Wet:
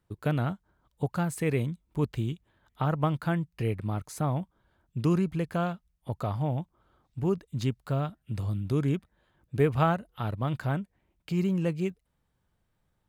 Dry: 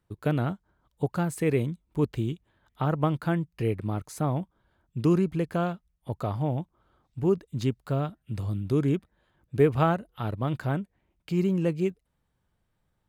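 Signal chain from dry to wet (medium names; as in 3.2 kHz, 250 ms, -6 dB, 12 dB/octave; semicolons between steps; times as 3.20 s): dynamic bell 360 Hz, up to -5 dB, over -39 dBFS, Q 1.2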